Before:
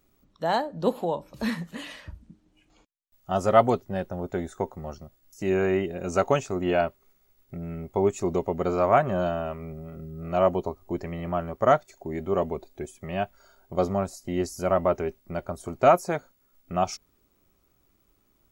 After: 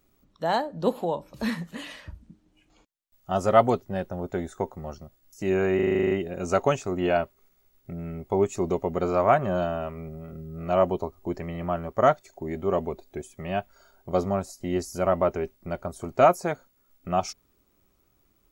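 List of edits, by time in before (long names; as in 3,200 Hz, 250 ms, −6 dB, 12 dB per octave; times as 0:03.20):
0:05.75: stutter 0.04 s, 10 plays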